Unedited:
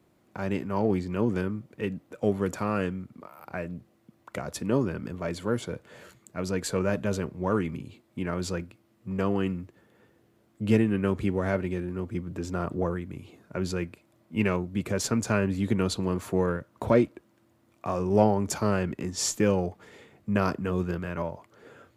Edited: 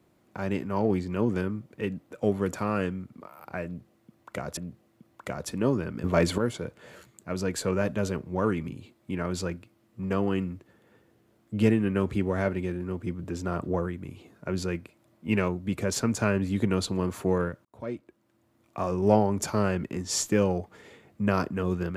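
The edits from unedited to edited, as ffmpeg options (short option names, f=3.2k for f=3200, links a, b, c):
-filter_complex "[0:a]asplit=5[a][b][c][d][e];[a]atrim=end=4.572[f];[b]atrim=start=3.648:end=5.122[g];[c]atrim=start=5.118:end=5.462,asetpts=PTS-STARTPTS,volume=9.5dB[h];[d]atrim=start=5.458:end=16.73,asetpts=PTS-STARTPTS,afade=t=out:st=11.268:d=0.004:c=hsin[i];[e]atrim=start=16.73,asetpts=PTS-STARTPTS,afade=t=in:d=1.15[j];[f][g]acrossfade=d=0.004:c1=hsin:c2=hsin[k];[k][h]acrossfade=d=0.004:c1=hsin:c2=hsin[l];[i][j]concat=n=2:v=0:a=1[m];[l][m]acrossfade=d=0.004:c1=hsin:c2=hsin"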